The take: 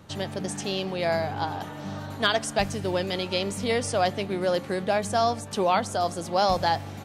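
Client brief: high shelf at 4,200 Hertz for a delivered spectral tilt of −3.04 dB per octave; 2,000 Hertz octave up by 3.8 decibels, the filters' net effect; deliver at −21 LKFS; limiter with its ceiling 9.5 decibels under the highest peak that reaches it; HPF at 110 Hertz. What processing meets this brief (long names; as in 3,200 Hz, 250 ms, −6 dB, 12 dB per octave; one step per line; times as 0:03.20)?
high-pass filter 110 Hz
parametric band 2,000 Hz +3.5 dB
high-shelf EQ 4,200 Hz +7 dB
level +6.5 dB
brickwall limiter −8 dBFS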